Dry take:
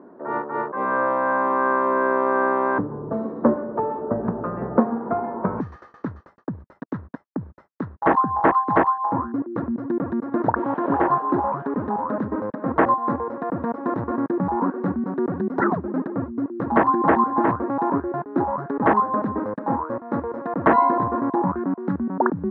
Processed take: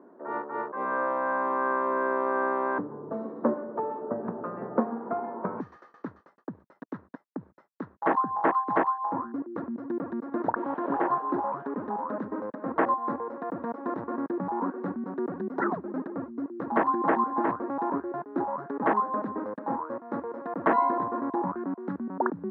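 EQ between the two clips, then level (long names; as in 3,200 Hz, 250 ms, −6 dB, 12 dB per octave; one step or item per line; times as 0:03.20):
high-pass filter 210 Hz 12 dB per octave
−6.5 dB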